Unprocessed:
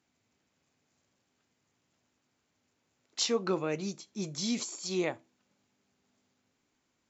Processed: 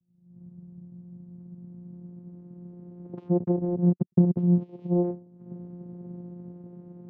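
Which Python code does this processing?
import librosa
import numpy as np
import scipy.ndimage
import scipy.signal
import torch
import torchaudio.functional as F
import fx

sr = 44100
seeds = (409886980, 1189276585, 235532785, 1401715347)

y = fx.delta_hold(x, sr, step_db=-34.0, at=(3.22, 4.47))
y = fx.recorder_agc(y, sr, target_db=-20.5, rise_db_per_s=72.0, max_gain_db=30)
y = fx.vocoder(y, sr, bands=4, carrier='saw', carrier_hz=176.0)
y = fx.filter_sweep_lowpass(y, sr, from_hz=160.0, to_hz=390.0, start_s=0.89, end_s=3.24, q=1.1)
y = y * librosa.db_to_amplitude(5.5)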